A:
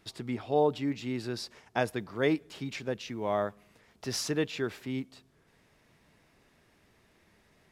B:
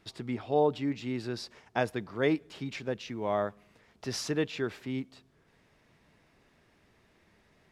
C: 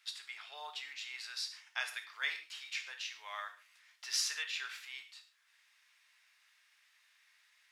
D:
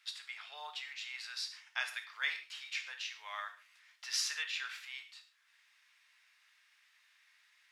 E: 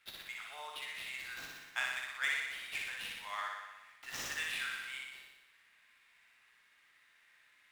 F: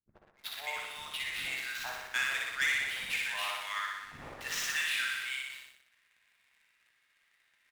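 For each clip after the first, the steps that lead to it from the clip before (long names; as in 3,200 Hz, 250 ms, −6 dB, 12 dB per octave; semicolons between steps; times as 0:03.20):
high-shelf EQ 8,600 Hz −9.5 dB
Bessel high-pass filter 2,100 Hz, order 4; reverb whose tail is shaped and stops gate 170 ms falling, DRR 5 dB; level +3 dB
high-pass filter 740 Hz 6 dB per octave; high-shelf EQ 5,000 Hz −6 dB; level +2.5 dB
running median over 9 samples; flutter between parallel walls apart 10.4 metres, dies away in 1.1 s; level +1 dB
three-band delay without the direct sound lows, mids, highs 80/380 ms, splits 300/1,100 Hz; leveller curve on the samples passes 2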